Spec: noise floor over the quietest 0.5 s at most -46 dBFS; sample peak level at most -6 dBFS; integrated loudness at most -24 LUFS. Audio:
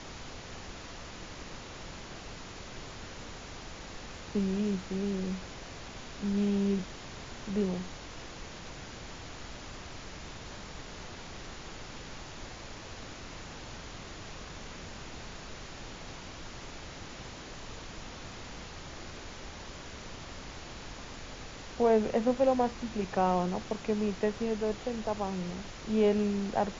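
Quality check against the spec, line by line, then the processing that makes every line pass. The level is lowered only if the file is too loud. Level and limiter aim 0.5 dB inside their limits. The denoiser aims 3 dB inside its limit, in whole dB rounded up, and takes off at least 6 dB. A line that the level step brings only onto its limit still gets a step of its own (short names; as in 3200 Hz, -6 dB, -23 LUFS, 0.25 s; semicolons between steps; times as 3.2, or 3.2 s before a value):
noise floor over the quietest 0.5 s -44 dBFS: fail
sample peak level -14.5 dBFS: OK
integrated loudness -36.0 LUFS: OK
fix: denoiser 6 dB, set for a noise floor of -44 dBFS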